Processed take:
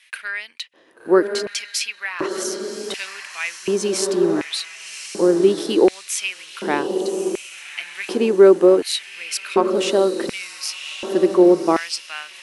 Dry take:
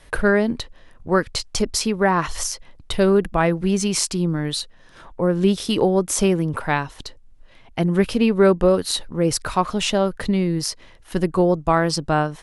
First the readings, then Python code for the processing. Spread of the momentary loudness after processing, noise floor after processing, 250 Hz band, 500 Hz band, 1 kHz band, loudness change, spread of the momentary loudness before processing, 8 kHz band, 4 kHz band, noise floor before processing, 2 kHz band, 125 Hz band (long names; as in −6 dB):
16 LU, −47 dBFS, −0.5 dB, +3.0 dB, −3.5 dB, +1.0 dB, 10 LU, −1.5 dB, +0.5 dB, −49 dBFS, −0.5 dB, −13.5 dB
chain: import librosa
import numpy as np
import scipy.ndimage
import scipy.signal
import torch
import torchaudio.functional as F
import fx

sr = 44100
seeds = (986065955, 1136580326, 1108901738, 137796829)

y = fx.echo_diffused(x, sr, ms=1136, feedback_pct=44, wet_db=-8)
y = fx.filter_lfo_highpass(y, sr, shape='square', hz=0.68, low_hz=340.0, high_hz=2400.0, q=3.4)
y = y * librosa.db_to_amplitude(-2.5)